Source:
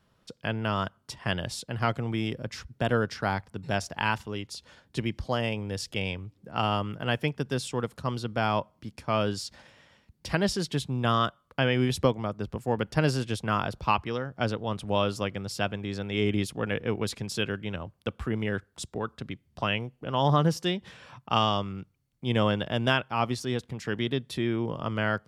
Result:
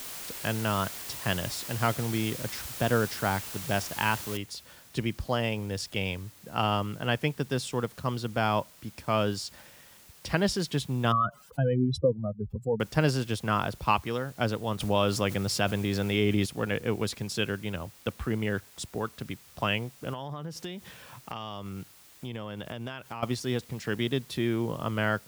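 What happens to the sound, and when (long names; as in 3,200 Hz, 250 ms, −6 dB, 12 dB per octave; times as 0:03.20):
0:04.37: noise floor change −40 dB −55 dB
0:11.12–0:12.80: expanding power law on the bin magnitudes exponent 3
0:14.80–0:16.46: envelope flattener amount 50%
0:20.13–0:23.23: downward compressor 8 to 1, threshold −33 dBFS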